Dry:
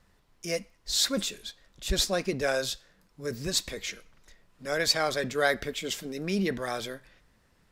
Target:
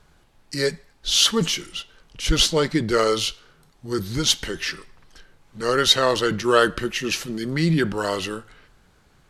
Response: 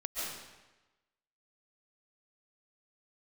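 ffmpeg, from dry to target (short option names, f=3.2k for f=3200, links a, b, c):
-af "asetrate=36603,aresample=44100,volume=8dB"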